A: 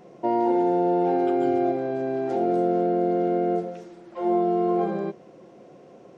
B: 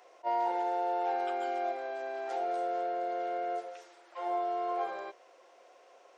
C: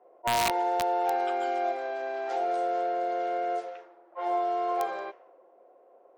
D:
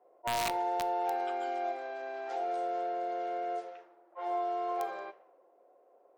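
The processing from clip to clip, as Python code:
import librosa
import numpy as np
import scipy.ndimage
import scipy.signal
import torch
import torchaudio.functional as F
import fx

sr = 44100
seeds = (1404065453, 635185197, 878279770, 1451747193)

y1 = scipy.signal.sosfilt(scipy.signal.bessel(4, 910.0, 'highpass', norm='mag', fs=sr, output='sos'), x)
y1 = fx.attack_slew(y1, sr, db_per_s=520.0)
y2 = fx.env_lowpass(y1, sr, base_hz=510.0, full_db=-31.0)
y2 = (np.mod(10.0 ** (23.0 / 20.0) * y2 + 1.0, 2.0) - 1.0) / 10.0 ** (23.0 / 20.0)
y2 = y2 * librosa.db_to_amplitude(4.5)
y3 = fx.room_shoebox(y2, sr, seeds[0], volume_m3=620.0, walls='furnished', distance_m=0.39)
y3 = y3 * librosa.db_to_amplitude(-6.0)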